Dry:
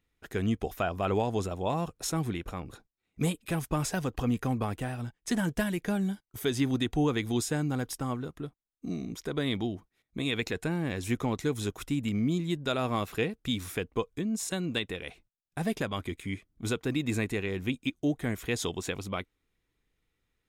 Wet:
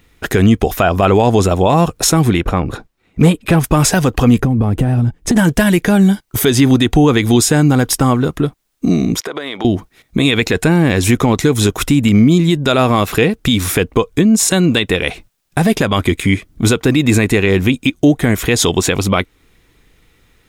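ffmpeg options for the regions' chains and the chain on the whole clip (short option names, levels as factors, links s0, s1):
-filter_complex "[0:a]asettb=1/sr,asplit=3[s0][s1][s2];[s0]atrim=end=2.414[s3];[s1]atrim=start=2.41:end=3.64,asetpts=PTS-STARTPTS,afade=t=in:d=0.004:c=qsin,afade=t=out:st=1.226:d=0.004:c=qsin,highshelf=f=3700:g=-11.5,asoftclip=type=hard:threshold=0.0794[s4];[s2]atrim=start=3.636[s5];[s3][s4]acrossfade=d=0.004:c1=hsin:c2=qsin[s6];[s6][s5]acrossfade=d=0.004:c1=qsin:c2=hsin,asettb=1/sr,asplit=3[s7][s8][s9];[s7]atrim=end=4.384[s10];[s8]atrim=start=4.38:end=5.36,asetpts=PTS-STARTPTS,afade=t=in:d=0.004:c=qsin,afade=t=out:st=0.976:d=0.004:c=qsin,tiltshelf=f=640:g=8.5,acompressor=threshold=0.0282:ratio=12:attack=3.2:release=140:knee=1:detection=peak[s11];[s9]atrim=start=5.356[s12];[s10][s11]acrossfade=d=0.004:c1=hsin:c2=qsin[s13];[s13][s12]acrossfade=d=0.004:c1=qsin:c2=hsin,asettb=1/sr,asplit=3[s14][s15][s16];[s14]atrim=end=9.204[s17];[s15]atrim=start=9.2:end=9.65,asetpts=PTS-STARTPTS,afade=t=in:d=0.004:c=qsin,afade=t=out:st=0.446:d=0.004:c=qsin,highpass=530,highshelf=f=4300:g=-11,acompressor=threshold=0.00631:ratio=16:attack=3.2:release=140:knee=1:detection=peak[s18];[s16]atrim=start=9.646[s19];[s17][s18]acrossfade=d=0.004:c1=hsin:c2=qsin[s20];[s20][s19]acrossfade=d=0.004:c1=qsin:c2=hsin,acompressor=threshold=0.00708:ratio=1.5,alimiter=level_in=22.4:limit=0.891:release=50:level=0:latency=1,volume=0.891"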